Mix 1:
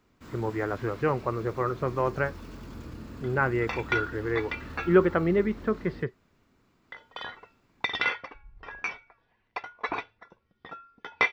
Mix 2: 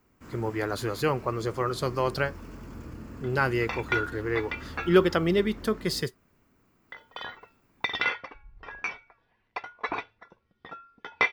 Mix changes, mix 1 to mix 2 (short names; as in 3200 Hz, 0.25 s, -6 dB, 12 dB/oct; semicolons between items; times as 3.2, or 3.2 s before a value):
speech: remove LPF 2100 Hz 24 dB/oct; first sound: add bell 3800 Hz -9.5 dB 0.55 oct